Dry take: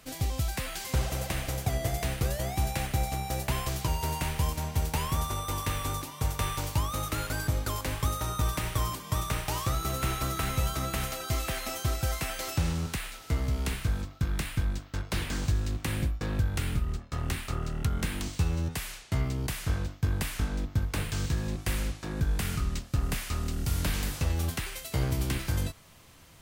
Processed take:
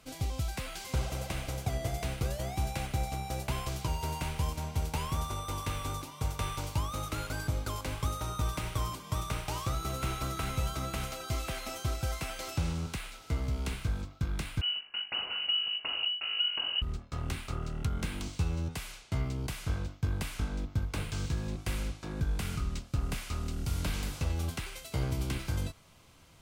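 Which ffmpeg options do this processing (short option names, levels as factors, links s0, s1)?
-filter_complex "[0:a]asettb=1/sr,asplit=3[s0][s1][s2];[s0]atrim=end=14.614[s3];[s1]atrim=start=14.61:end=16.82,asetpts=PTS-STARTPTS,afade=t=in:d=0.004:c=qsin,afade=t=out:st=2.206:d=0.004:c=qsin,lowpass=f=2600:t=q:w=0.5098,lowpass=f=2600:t=q:w=0.6013,lowpass=f=2600:t=q:w=0.9,lowpass=f=2600:t=q:w=2.563,afreqshift=-3000[s4];[s2]atrim=start=16.816[s5];[s3][s4]acrossfade=d=0.004:c1=hsin:c2=qsin[s6];[s6][s5]acrossfade=d=0.004:c1=qsin:c2=hsin,highshelf=f=12000:g=-10,bandreject=f=1800:w=8.8,volume=0.668"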